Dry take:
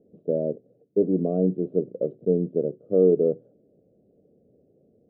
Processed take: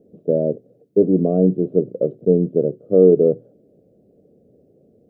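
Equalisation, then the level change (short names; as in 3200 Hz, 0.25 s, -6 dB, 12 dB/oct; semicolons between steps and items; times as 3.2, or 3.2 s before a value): dynamic EQ 120 Hz, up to +6 dB, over -46 dBFS, Q 3; +6.5 dB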